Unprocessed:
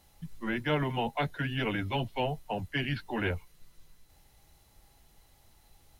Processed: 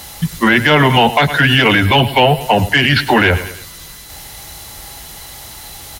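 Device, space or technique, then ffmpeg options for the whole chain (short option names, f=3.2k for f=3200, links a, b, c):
mastering chain: -filter_complex "[0:a]asettb=1/sr,asplit=3[a][b][c];[a]atrim=end=1.864[d];[b]atrim=start=1.86:end=2.41,asetpts=PTS-STARTPTS,afade=t=in:d=0.004:c=qsin,afade=t=out:st=0.546:d=0.004:c=qsin,equalizer=f=6.2k:t=o:w=0.34:g=-15[e];[c]atrim=start=2.406[f];[d][e]acrossfade=d=0.004:c1=hsin:c2=qsin[g];[g][f]acrossfade=d=0.004:c1=qsin:c2=hsin,highpass=42,equalizer=f=2.5k:t=o:w=0.2:g=-3.5,aecho=1:1:105|210|315:0.106|0.0413|0.0161,acompressor=threshold=-33dB:ratio=2.5,asoftclip=type=tanh:threshold=-25dB,tiltshelf=f=880:g=-4.5,alimiter=level_in=30dB:limit=-1dB:release=50:level=0:latency=1,volume=-1dB"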